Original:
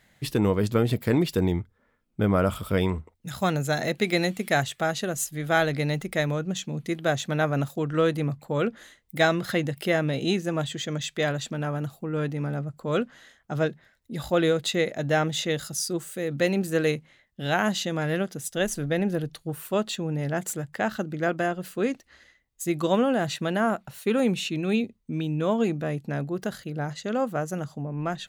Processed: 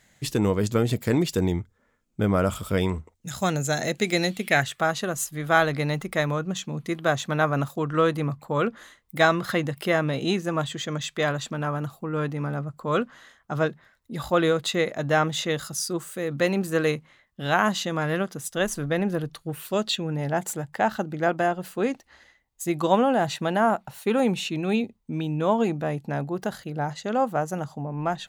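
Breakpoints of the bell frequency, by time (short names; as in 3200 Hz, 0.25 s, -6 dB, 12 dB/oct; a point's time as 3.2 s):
bell +9 dB 0.64 oct
4.15 s 6900 Hz
4.79 s 1100 Hz
19.39 s 1100 Hz
19.79 s 7400 Hz
20.2 s 860 Hz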